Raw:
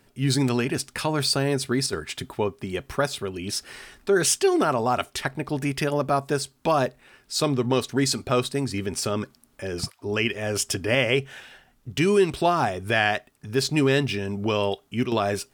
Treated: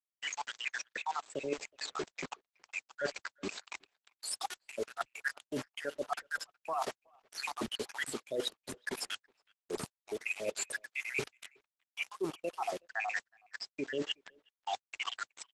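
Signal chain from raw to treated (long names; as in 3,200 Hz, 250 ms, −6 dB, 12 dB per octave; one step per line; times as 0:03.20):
time-frequency cells dropped at random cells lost 82%
noise gate −58 dBFS, range −20 dB
high shelf with overshoot 3,800 Hz −6.5 dB, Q 1.5
on a send at −19 dB: convolution reverb, pre-delay 3 ms
on the sum: bit reduction 7 bits
high-pass filter 390 Hz 12 dB per octave
reversed playback
downward compressor 20 to 1, threshold −39 dBFS, peak gain reduction 21.5 dB
reversed playback
far-end echo of a speakerphone 370 ms, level −29 dB
level +7.5 dB
Opus 12 kbit/s 48,000 Hz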